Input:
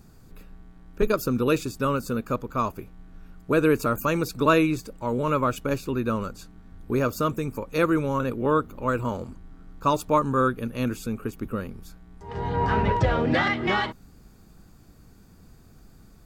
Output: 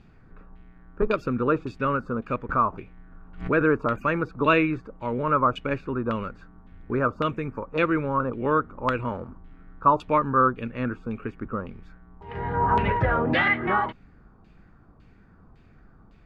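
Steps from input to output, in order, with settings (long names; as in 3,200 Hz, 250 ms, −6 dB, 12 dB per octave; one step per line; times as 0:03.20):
auto-filter low-pass saw down 1.8 Hz 970–3,000 Hz
0:02.49–0:03.77: background raised ahead of every attack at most 120 dB per second
level −2 dB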